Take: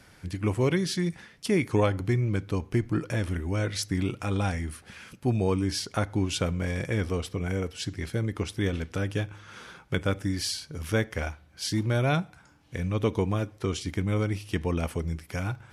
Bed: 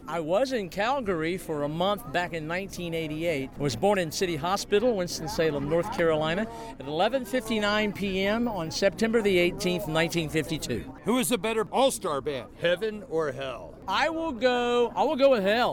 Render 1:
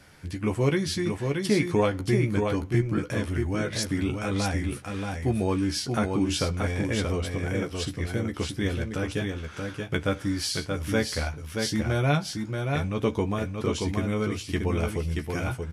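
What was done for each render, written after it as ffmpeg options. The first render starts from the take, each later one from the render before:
-filter_complex "[0:a]asplit=2[a][b];[b]adelay=14,volume=-6dB[c];[a][c]amix=inputs=2:normalize=0,aecho=1:1:629:0.596"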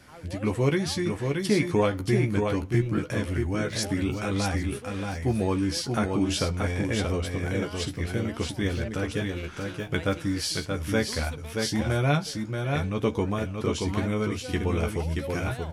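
-filter_complex "[1:a]volume=-17.5dB[a];[0:a][a]amix=inputs=2:normalize=0"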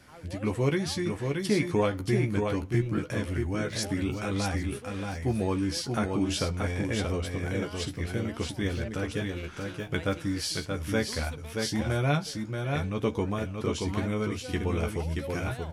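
-af "volume=-2.5dB"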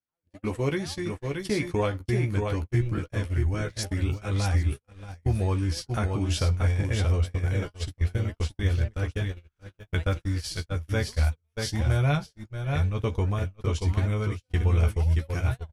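-af "agate=range=-44dB:threshold=-31dB:ratio=16:detection=peak,asubboost=boost=8.5:cutoff=77"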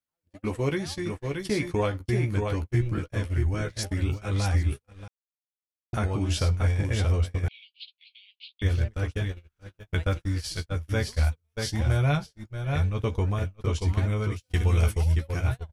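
-filter_complex "[0:a]asettb=1/sr,asplit=3[a][b][c];[a]atrim=end=7.484[d];[b]atrim=start=7.48:end=8.62,asetpts=PTS-STARTPTS,afade=t=in:d=0.004:c=qsin,afade=t=out:st=1.136:d=0.004:c=qsin,asuperpass=centerf=3300:order=12:qfactor=1.6[e];[c]atrim=start=8.616[f];[d][e]acrossfade=d=0.004:c1=hsin:c2=qsin[g];[g][f]acrossfade=d=0.004:c1=qsin:c2=hsin,asettb=1/sr,asplit=3[h][i][j];[h]atrim=end=14.364[k];[i]atrim=start=14.36:end=15.12,asetpts=PTS-STARTPTS,afade=t=in:d=0.004:c=qsin,afade=t=out:st=0.756:d=0.004:c=qsin,highshelf=f=3.2k:g=9[l];[j]atrim=start=15.116[m];[k][l]acrossfade=d=0.004:c1=hsin:c2=qsin[n];[n][m]acrossfade=d=0.004:c1=qsin:c2=hsin,asplit=3[o][p][q];[o]atrim=end=5.08,asetpts=PTS-STARTPTS,afade=t=out:st=5.076:d=0.004:c=hsin[r];[p]atrim=start=5.08:end=5.93,asetpts=PTS-STARTPTS,volume=0[s];[q]atrim=start=5.93,asetpts=PTS-STARTPTS,afade=t=in:d=0.004:c=hsin[t];[r][s][t]concat=n=3:v=0:a=1"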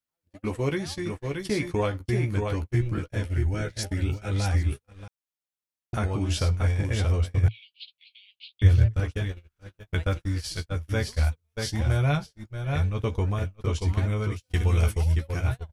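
-filter_complex "[0:a]asettb=1/sr,asplit=3[a][b][c];[a]atrim=end=3.084[d];[b]atrim=start=3.08:end=4.5,asetpts=PTS-STARTPTS,afade=t=in:d=0.004:c=qsin,afade=t=out:st=1.416:d=0.004:c=qsin,asuperstop=centerf=1100:order=4:qfactor=5.9[e];[c]atrim=start=4.496[f];[d][e]acrossfade=d=0.004:c1=hsin:c2=qsin[g];[g][f]acrossfade=d=0.004:c1=qsin:c2=hsin,asettb=1/sr,asplit=3[h][i][j];[h]atrim=end=7.374[k];[i]atrim=start=7.37:end=9,asetpts=PTS-STARTPTS,afade=t=in:d=0.004:c=qsin,afade=t=out:st=1.626:d=0.004:c=qsin,equalizer=f=110:w=2.4:g=13.5[l];[j]atrim=start=8.996[m];[k][l]acrossfade=d=0.004:c1=hsin:c2=qsin[n];[n][m]acrossfade=d=0.004:c1=qsin:c2=hsin"

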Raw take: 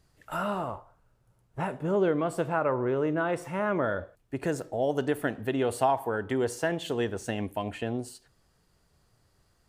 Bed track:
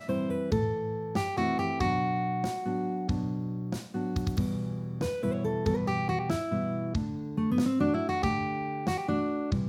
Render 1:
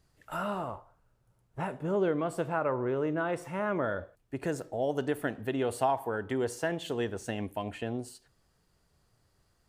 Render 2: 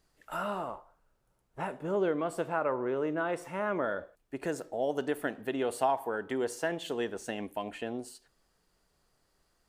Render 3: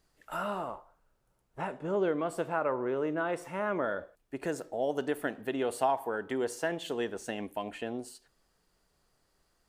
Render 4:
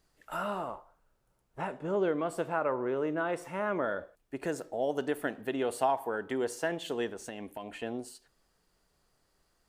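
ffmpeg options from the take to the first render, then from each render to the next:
-af "volume=-3dB"
-af "equalizer=f=100:t=o:w=1.1:g=-14.5"
-filter_complex "[0:a]asettb=1/sr,asplit=3[a][b][c];[a]atrim=end=1.614[d];[b]atrim=start=1.61:end=2.07,asetpts=PTS-STARTPTS,afade=t=in:d=0.004:c=qsin,afade=t=out:st=0.456:d=0.004:c=qsin,lowpass=8.4k[e];[c]atrim=start=2.066[f];[d][e]acrossfade=d=0.004:c1=hsin:c2=qsin[g];[g][f]acrossfade=d=0.004:c1=qsin:c2=hsin"
-filter_complex "[0:a]asettb=1/sr,asplit=3[a][b][c];[a]atrim=end=7.074[d];[b]atrim=start=7.07:end=7.83,asetpts=PTS-STARTPTS,afade=t=in:d=0.004:c=qsin,afade=t=out:st=0.756:d=0.004:c=qsin,acompressor=threshold=-37dB:ratio=3:attack=3.2:release=140:knee=1:detection=peak[e];[c]atrim=start=7.826[f];[d][e]acrossfade=d=0.004:c1=hsin:c2=qsin[g];[g][f]acrossfade=d=0.004:c1=qsin:c2=hsin"

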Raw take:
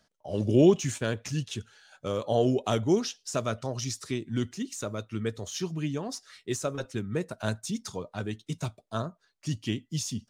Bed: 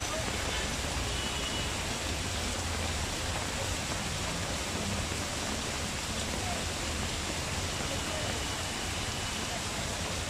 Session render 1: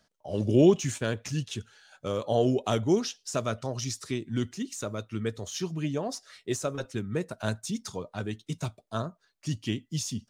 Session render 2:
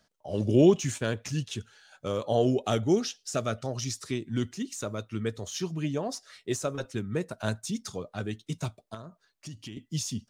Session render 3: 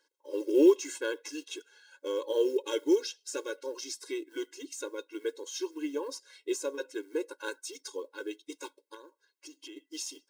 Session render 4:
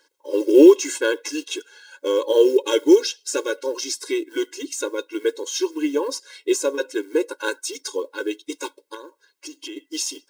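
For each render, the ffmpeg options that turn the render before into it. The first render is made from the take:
-filter_complex "[0:a]asettb=1/sr,asplit=3[a][b][c];[a]atrim=end=5.844[d];[b]atrim=start=5.84:end=6.64,asetpts=PTS-STARTPTS,afade=t=in:d=0.004:c=qsin,afade=t=out:st=0.796:d=0.004:c=qsin,equalizer=f=610:t=o:w=0.71:g=7.5[e];[c]atrim=start=6.636[f];[d][e]acrossfade=d=0.004:c1=hsin:c2=qsin[g];[g][f]acrossfade=d=0.004:c1=qsin:c2=hsin"
-filter_complex "[0:a]asettb=1/sr,asplit=3[a][b][c];[a]atrim=end=2.654[d];[b]atrim=start=2.65:end=3.75,asetpts=PTS-STARTPTS,afade=t=in:d=0.004:c=qsin,afade=t=out:st=1.096:d=0.004:c=qsin,asuperstop=centerf=1000:order=4:qfactor=6.2[e];[c]atrim=start=3.746[f];[d][e]acrossfade=d=0.004:c1=hsin:c2=qsin[g];[g][f]acrossfade=d=0.004:c1=qsin:c2=hsin,asettb=1/sr,asplit=3[h][i][j];[h]atrim=end=7.744[k];[i]atrim=start=7.74:end=8.43,asetpts=PTS-STARTPTS,afade=t=in:d=0.004:c=qsin,afade=t=out:st=0.686:d=0.004:c=qsin,bandreject=f=940:w=8.2[l];[j]atrim=start=8.426[m];[k][l]acrossfade=d=0.004:c1=hsin:c2=qsin[n];[n][m]acrossfade=d=0.004:c1=qsin:c2=hsin,asettb=1/sr,asplit=3[o][p][q];[o]atrim=end=8.944[r];[p]atrim=start=8.94:end=9.77,asetpts=PTS-STARTPTS,afade=t=in:d=0.004:c=qsin,afade=t=out:st=0.826:d=0.004:c=qsin,acompressor=threshold=-38dB:ratio=6:attack=3.2:release=140:knee=1:detection=peak[s];[q]atrim=start=9.766[t];[r][s]acrossfade=d=0.004:c1=hsin:c2=qsin[u];[u][t]acrossfade=d=0.004:c1=qsin:c2=hsin"
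-af "acrusher=bits=8:mode=log:mix=0:aa=0.000001,afftfilt=real='re*eq(mod(floor(b*sr/1024/280),2),1)':imag='im*eq(mod(floor(b*sr/1024/280),2),1)':win_size=1024:overlap=0.75"
-af "volume=12dB,alimiter=limit=-2dB:level=0:latency=1"

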